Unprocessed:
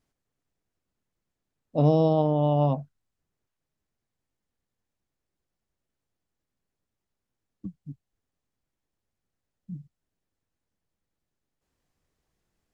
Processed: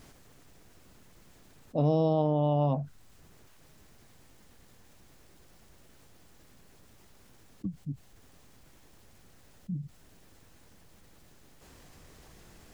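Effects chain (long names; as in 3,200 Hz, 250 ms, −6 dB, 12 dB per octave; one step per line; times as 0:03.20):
envelope flattener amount 50%
level −6 dB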